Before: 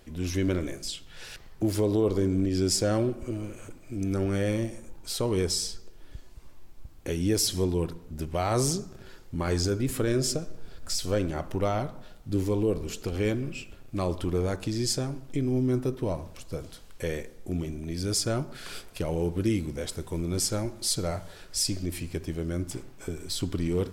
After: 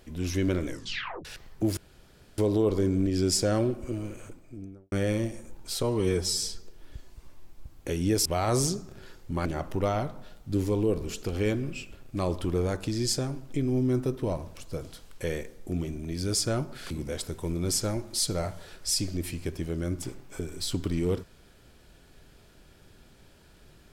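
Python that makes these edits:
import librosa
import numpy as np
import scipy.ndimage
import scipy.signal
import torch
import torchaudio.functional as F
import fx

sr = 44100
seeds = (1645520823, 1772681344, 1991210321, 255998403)

y = fx.studio_fade_out(x, sr, start_s=3.51, length_s=0.8)
y = fx.edit(y, sr, fx.tape_stop(start_s=0.67, length_s=0.58),
    fx.insert_room_tone(at_s=1.77, length_s=0.61),
    fx.stretch_span(start_s=5.22, length_s=0.39, factor=1.5),
    fx.cut(start_s=7.45, length_s=0.84),
    fx.cut(start_s=9.49, length_s=1.76),
    fx.cut(start_s=18.7, length_s=0.89), tone=tone)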